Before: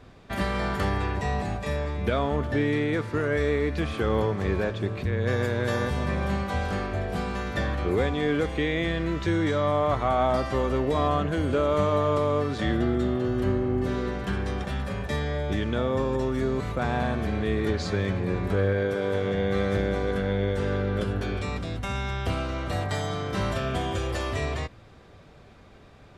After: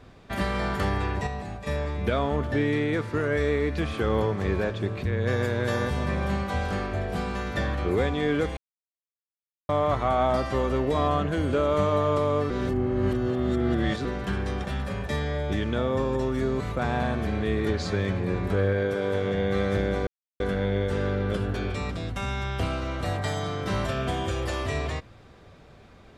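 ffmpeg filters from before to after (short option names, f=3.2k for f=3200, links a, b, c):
-filter_complex "[0:a]asplit=8[a][b][c][d][e][f][g][h];[a]atrim=end=1.272[i];[b]atrim=start=1.268:end=1.672,asetpts=PTS-STARTPTS,volume=-6dB[j];[c]atrim=start=1.668:end=8.57,asetpts=PTS-STARTPTS,afade=t=out:st=6.898:d=0.004:c=hsin[k];[d]atrim=start=8.57:end=9.69,asetpts=PTS-STARTPTS,volume=0[l];[e]atrim=start=9.69:end=12.502,asetpts=PTS-STARTPTS,afade=t=in:d=0.004:c=hsin[m];[f]atrim=start=12.498:end=14.052,asetpts=PTS-STARTPTS,areverse[n];[g]atrim=start=14.048:end=20.07,asetpts=PTS-STARTPTS,afade=t=out:st=6.018:d=0.004:c=hsin,apad=pad_dur=0.33[o];[h]atrim=start=20.07,asetpts=PTS-STARTPTS,afade=t=in:d=0.004:c=hsin[p];[i][j]acrossfade=d=0.004:c1=hsin:c2=hsin[q];[k][l][m]concat=n=3:v=0:a=1[r];[q][r]acrossfade=d=0.004:c1=hsin:c2=hsin[s];[s][n]acrossfade=d=0.004:c1=hsin:c2=hsin[t];[o][p]concat=n=2:v=0:a=1[u];[t][u]acrossfade=d=0.004:c1=hsin:c2=hsin"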